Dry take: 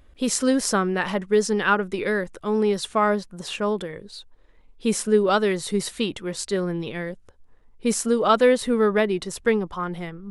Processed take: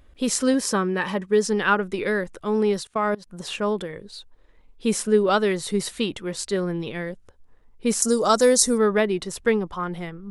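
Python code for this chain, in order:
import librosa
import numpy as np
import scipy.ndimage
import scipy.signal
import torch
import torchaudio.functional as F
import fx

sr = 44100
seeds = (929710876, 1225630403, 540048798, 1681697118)

y = fx.notch_comb(x, sr, f0_hz=700.0, at=(0.54, 1.44))
y = fx.level_steps(y, sr, step_db=22, at=(2.82, 3.26), fade=0.02)
y = fx.high_shelf_res(y, sr, hz=4200.0, db=13.5, q=3.0, at=(8.02, 8.78))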